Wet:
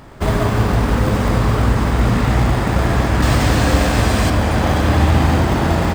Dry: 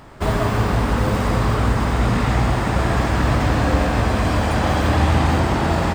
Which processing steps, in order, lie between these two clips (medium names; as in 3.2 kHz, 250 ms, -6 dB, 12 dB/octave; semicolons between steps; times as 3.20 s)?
3.22–4.30 s: treble shelf 3 kHz +10.5 dB; in parallel at -9.5 dB: sample-rate reducer 1.4 kHz; on the sum: trim +1 dB